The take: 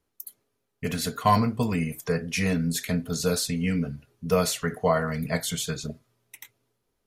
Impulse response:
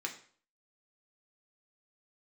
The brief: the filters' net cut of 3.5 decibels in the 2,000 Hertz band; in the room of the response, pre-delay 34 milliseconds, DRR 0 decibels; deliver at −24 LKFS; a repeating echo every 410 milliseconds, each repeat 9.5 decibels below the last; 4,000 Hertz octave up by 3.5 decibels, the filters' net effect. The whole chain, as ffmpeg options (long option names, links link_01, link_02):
-filter_complex "[0:a]equalizer=frequency=2000:width_type=o:gain=-6,equalizer=frequency=4000:width_type=o:gain=5.5,aecho=1:1:410|820|1230|1640:0.335|0.111|0.0365|0.012,asplit=2[link_01][link_02];[1:a]atrim=start_sample=2205,adelay=34[link_03];[link_02][link_03]afir=irnorm=-1:irlink=0,volume=-2dB[link_04];[link_01][link_04]amix=inputs=2:normalize=0,volume=0.5dB"